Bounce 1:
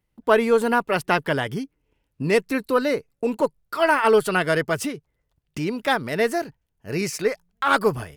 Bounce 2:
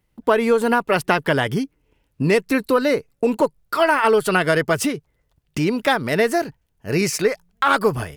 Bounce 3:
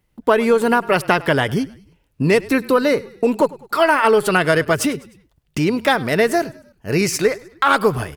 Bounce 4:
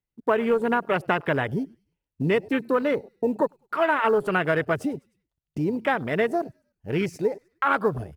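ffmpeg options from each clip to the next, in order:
ffmpeg -i in.wav -af "acompressor=threshold=-20dB:ratio=4,volume=6.5dB" out.wav
ffmpeg -i in.wav -filter_complex "[0:a]asplit=4[link_01][link_02][link_03][link_04];[link_02]adelay=102,afreqshift=-33,volume=-21dB[link_05];[link_03]adelay=204,afreqshift=-66,volume=-27.4dB[link_06];[link_04]adelay=306,afreqshift=-99,volume=-33.8dB[link_07];[link_01][link_05][link_06][link_07]amix=inputs=4:normalize=0,volume=2dB" out.wav
ffmpeg -i in.wav -af "acrusher=bits=6:mode=log:mix=0:aa=0.000001,afwtdn=0.0708,volume=-7dB" out.wav

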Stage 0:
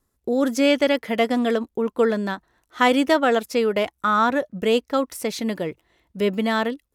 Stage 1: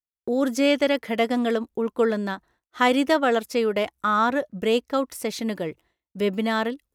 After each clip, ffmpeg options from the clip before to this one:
ffmpeg -i in.wav -af "agate=range=-33dB:threshold=-47dB:ratio=3:detection=peak,volume=-2dB" out.wav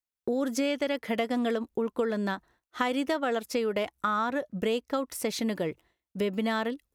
ffmpeg -i in.wav -af "acompressor=threshold=-25dB:ratio=6" out.wav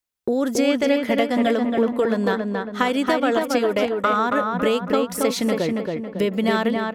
ffmpeg -i in.wav -filter_complex "[0:a]asplit=2[link_01][link_02];[link_02]adelay=276,lowpass=frequency=2500:poles=1,volume=-3dB,asplit=2[link_03][link_04];[link_04]adelay=276,lowpass=frequency=2500:poles=1,volume=0.48,asplit=2[link_05][link_06];[link_06]adelay=276,lowpass=frequency=2500:poles=1,volume=0.48,asplit=2[link_07][link_08];[link_08]adelay=276,lowpass=frequency=2500:poles=1,volume=0.48,asplit=2[link_09][link_10];[link_10]adelay=276,lowpass=frequency=2500:poles=1,volume=0.48,asplit=2[link_11][link_12];[link_12]adelay=276,lowpass=frequency=2500:poles=1,volume=0.48[link_13];[link_01][link_03][link_05][link_07][link_09][link_11][link_13]amix=inputs=7:normalize=0,volume=7dB" out.wav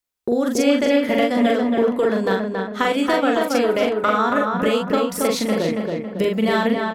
ffmpeg -i in.wav -filter_complex "[0:a]asplit=2[link_01][link_02];[link_02]adelay=42,volume=-3dB[link_03];[link_01][link_03]amix=inputs=2:normalize=0" out.wav

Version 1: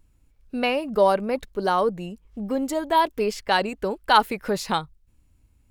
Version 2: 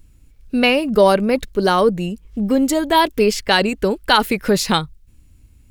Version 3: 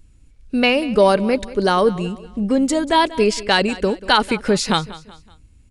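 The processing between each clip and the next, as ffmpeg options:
ffmpeg -i in.wav -af "equalizer=frequency=850:width=0.85:gain=-8,alimiter=level_in=12.5dB:limit=-1dB:release=50:level=0:latency=1,volume=-1dB" out.wav
ffmpeg -i in.wav -af "aecho=1:1:188|376|564:0.126|0.0516|0.0212,aresample=22050,aresample=44100,volume=-1dB" out.wav

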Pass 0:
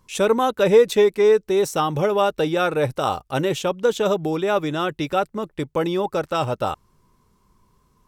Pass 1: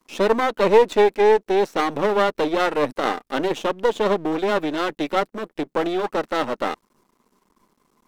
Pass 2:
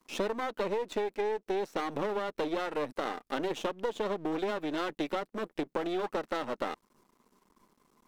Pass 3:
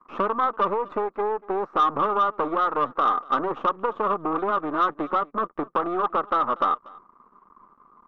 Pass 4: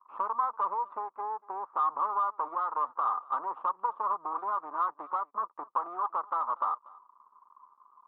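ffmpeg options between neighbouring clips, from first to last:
ffmpeg -i in.wav -filter_complex "[0:a]acrossover=split=4300[link_01][link_02];[link_02]acompressor=threshold=-55dB:ratio=4:attack=1:release=60[link_03];[link_01][link_03]amix=inputs=2:normalize=0,aeval=exprs='max(val(0),0)':channel_layout=same,lowshelf=frequency=160:width_type=q:width=1.5:gain=-13,volume=3.5dB" out.wav
ffmpeg -i in.wav -af "alimiter=limit=-11dB:level=0:latency=1:release=330,acompressor=threshold=-25dB:ratio=6,volume=-3.5dB" out.wav
ffmpeg -i in.wav -af "lowpass=frequency=1200:width_type=q:width=11,asoftclip=type=tanh:threshold=-16.5dB,aecho=1:1:239:0.0708,volume=4dB" out.wav
ffmpeg -i in.wav -af "bandpass=frequency=970:width_type=q:width=5.5:csg=0" out.wav

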